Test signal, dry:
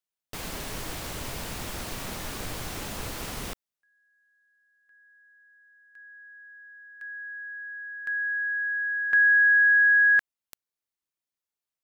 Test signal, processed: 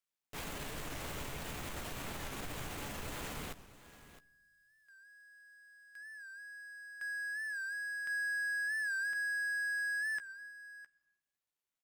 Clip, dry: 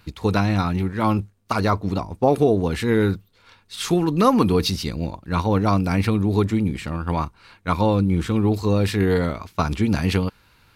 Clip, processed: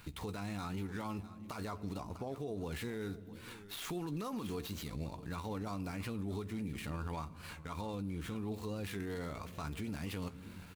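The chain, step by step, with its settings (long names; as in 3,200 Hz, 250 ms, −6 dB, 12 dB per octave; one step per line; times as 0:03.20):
running median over 9 samples
double-tracking delay 14 ms −12 dB
rectangular room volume 3,800 cubic metres, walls furnished, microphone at 0.33 metres
downward compressor 6 to 1, threshold −33 dBFS
high-shelf EQ 3,400 Hz +11.5 dB
single-tap delay 654 ms −19 dB
brickwall limiter −29.5 dBFS
wow of a warped record 45 rpm, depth 100 cents
level −2.5 dB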